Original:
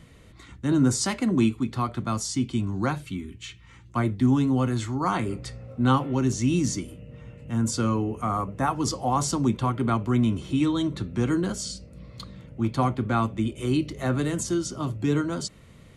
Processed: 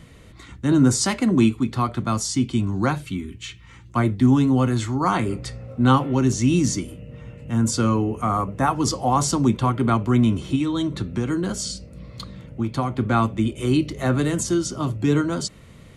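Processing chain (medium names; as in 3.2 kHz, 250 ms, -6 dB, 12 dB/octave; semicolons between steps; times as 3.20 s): 10.55–12.96 s: compression, threshold -24 dBFS, peak gain reduction 6.5 dB; trim +4.5 dB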